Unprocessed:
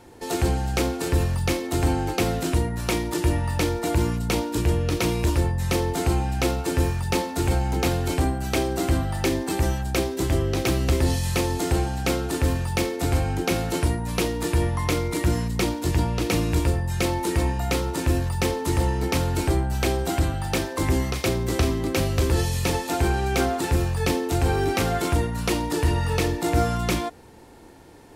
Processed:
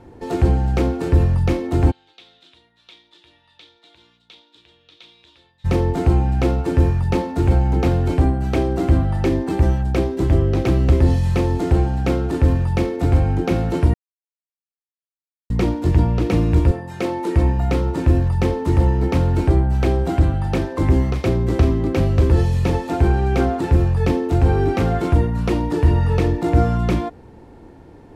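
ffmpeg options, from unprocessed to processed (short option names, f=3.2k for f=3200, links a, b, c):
-filter_complex "[0:a]asplit=3[a][b][c];[a]afade=t=out:st=1.9:d=0.02[d];[b]bandpass=f=3.6k:t=q:w=7.6,afade=t=in:st=1.9:d=0.02,afade=t=out:st=5.64:d=0.02[e];[c]afade=t=in:st=5.64:d=0.02[f];[d][e][f]amix=inputs=3:normalize=0,asettb=1/sr,asplit=3[g][h][i];[g]atrim=end=16.714[j];[h]atrim=start=16.71:end=17.36,asetpts=PTS-STARTPTS,afade=t=in:d=0.004:c=qsin,afade=t=out:st=0.646:d=0.004:c=qsin,highpass=260[k];[i]atrim=start=17.356[l];[j][k]acrossfade=d=0.004:c1=hsin:c2=qsin[m];[m][l]acrossfade=d=0.004:c1=qsin:c2=hsin,asplit=3[n][o][p];[n]atrim=end=13.94,asetpts=PTS-STARTPTS,afade=t=out:st=13.936:d=0.004:c=hsin[q];[o]atrim=start=13.94:end=15.5,asetpts=PTS-STARTPTS,volume=0[r];[p]atrim=start=15.5,asetpts=PTS-STARTPTS,afade=t=in:d=0.004:c=hsin[s];[q][r][s]concat=n=3:v=0:a=1,lowpass=f=1.6k:p=1,lowshelf=f=370:g=6.5,volume=1.5dB"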